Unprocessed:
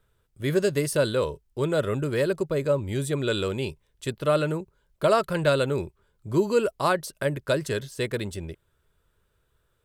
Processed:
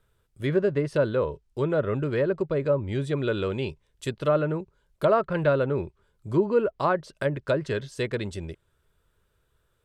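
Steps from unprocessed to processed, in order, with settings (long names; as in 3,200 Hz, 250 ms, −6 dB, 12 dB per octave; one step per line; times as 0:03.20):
treble cut that deepens with the level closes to 1,600 Hz, closed at −20 dBFS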